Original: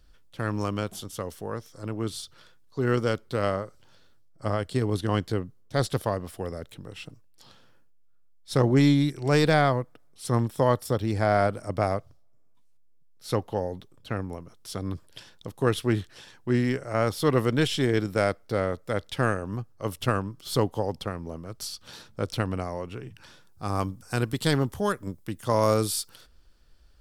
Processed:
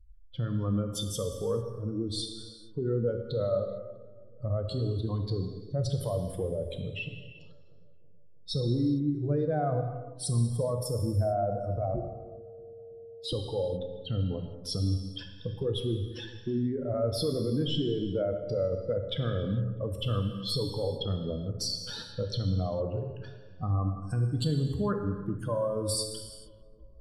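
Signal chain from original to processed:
expanding power law on the bin magnitudes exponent 2.5
in parallel at +2.5 dB: downward compressor, threshold −32 dBFS, peak gain reduction 14.5 dB
on the sum: brickwall limiter −19.5 dBFS, peak gain reduction 9.5 dB
0:11.94–0:13.33: frequency shifter −460 Hz
on a send: feedback echo with a low-pass in the loop 324 ms, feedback 59%, low-pass 1,300 Hz, level −21 dB
on the sum: reverb whose tail is shaped and stops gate 480 ms falling, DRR 4 dB
level −3 dB

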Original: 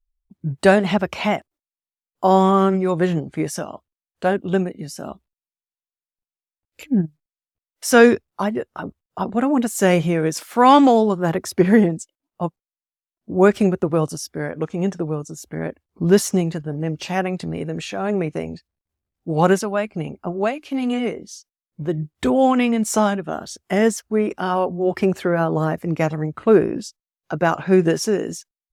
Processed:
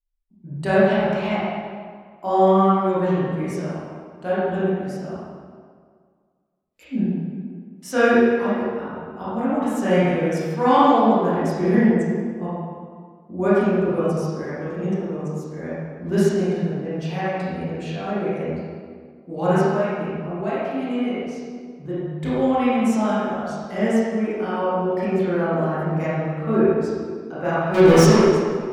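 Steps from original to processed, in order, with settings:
0:27.74–0:28.16: leveller curve on the samples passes 5
convolution reverb RT60 1.9 s, pre-delay 20 ms, DRR −11 dB
level −14 dB

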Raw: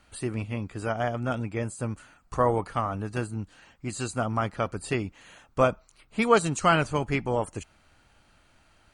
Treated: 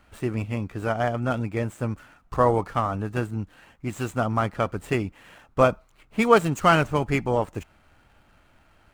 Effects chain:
running median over 9 samples
level +3.5 dB

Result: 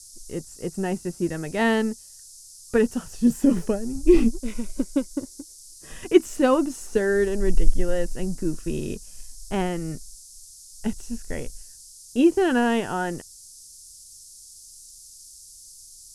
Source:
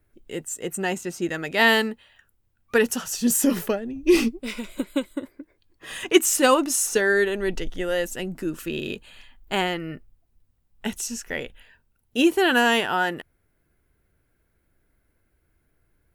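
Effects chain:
mu-law and A-law mismatch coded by A
spectral tilt −4 dB per octave
noise in a band 4,900–11,000 Hz −42 dBFS
level −4.5 dB

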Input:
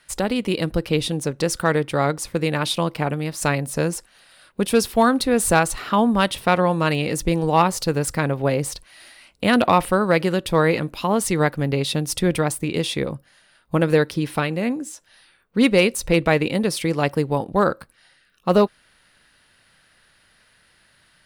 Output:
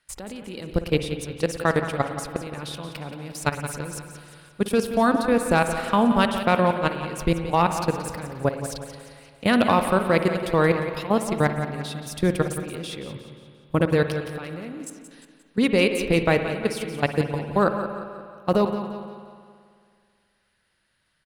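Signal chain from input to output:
low-shelf EQ 150 Hz +2.5 dB
output level in coarse steps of 18 dB
on a send: repeating echo 176 ms, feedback 46%, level −11 dB
on the sum: spring reverb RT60 2.2 s, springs 54 ms, chirp 45 ms, DRR 8 dB

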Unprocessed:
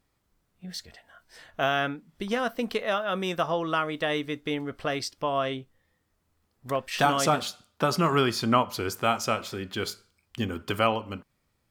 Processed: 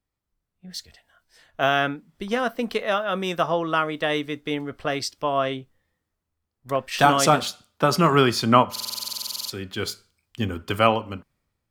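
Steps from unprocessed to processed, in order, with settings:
buffer that repeats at 0:08.71, samples 2,048, times 16
multiband upward and downward expander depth 40%
level +4 dB

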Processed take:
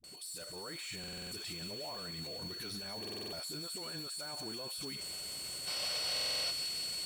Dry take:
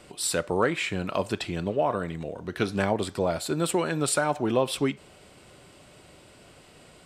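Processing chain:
first-order pre-emphasis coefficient 0.8
floating-point word with a short mantissa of 2 bits
high-shelf EQ 6,300 Hz +6.5 dB
automatic gain control gain up to 14 dB
brickwall limiter −36.5 dBFS, peak gain reduction 35 dB
steady tone 4,400 Hz −51 dBFS
all-pass dispersion highs, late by 40 ms, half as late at 330 Hz
gain on a spectral selection 0:05.67–0:06.51, 440–6,100 Hz +11 dB
delay with a high-pass on its return 180 ms, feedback 81%, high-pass 1,900 Hz, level −9 dB
buffer that repeats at 0:00.99/0:03.00/0:06.12, samples 2,048, times 6

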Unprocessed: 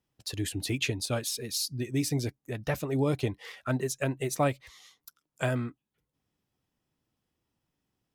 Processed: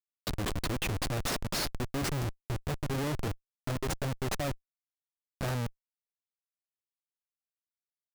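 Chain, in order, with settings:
comparator with hysteresis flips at −30.5 dBFS
level +2 dB

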